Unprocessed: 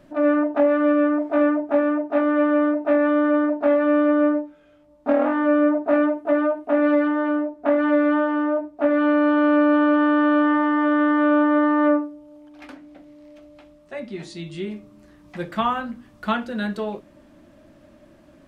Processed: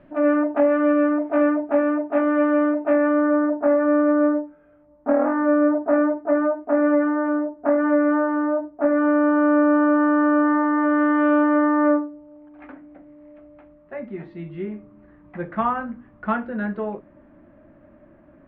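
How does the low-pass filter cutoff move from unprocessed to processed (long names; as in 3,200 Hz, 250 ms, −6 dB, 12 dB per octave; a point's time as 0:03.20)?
low-pass filter 24 dB per octave
0:02.84 2,700 Hz
0:03.33 1,800 Hz
0:10.71 1,800 Hz
0:11.30 2,800 Hz
0:11.74 2,000 Hz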